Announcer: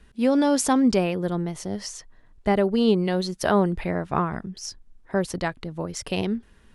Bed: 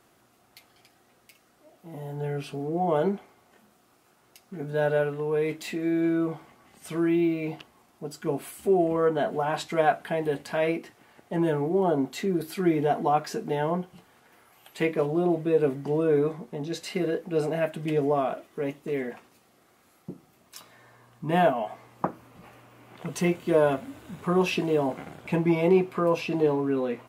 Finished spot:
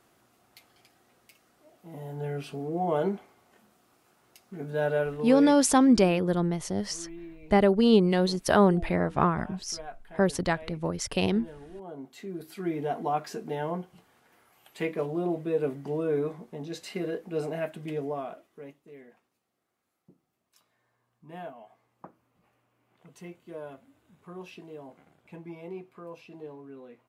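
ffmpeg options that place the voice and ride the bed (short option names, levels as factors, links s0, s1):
-filter_complex "[0:a]adelay=5050,volume=1[s0];[1:a]volume=4.22,afade=t=out:st=5.23:d=0.44:silence=0.133352,afade=t=in:st=11.83:d=1.28:silence=0.177828,afade=t=out:st=17.54:d=1.34:silence=0.188365[s1];[s0][s1]amix=inputs=2:normalize=0"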